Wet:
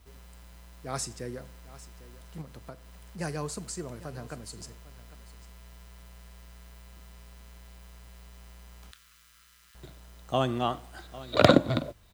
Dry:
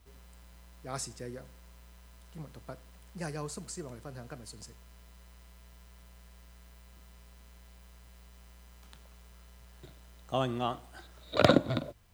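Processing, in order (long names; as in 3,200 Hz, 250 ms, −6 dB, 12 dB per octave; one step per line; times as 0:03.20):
0:02.41–0:03.19: downward compressor 2.5 to 1, threshold −46 dBFS, peak gain reduction 6 dB
0:08.91–0:09.75: Butterworth high-pass 1,200 Hz 48 dB per octave
on a send: single-tap delay 800 ms −17.5 dB
on the sum: level +4 dB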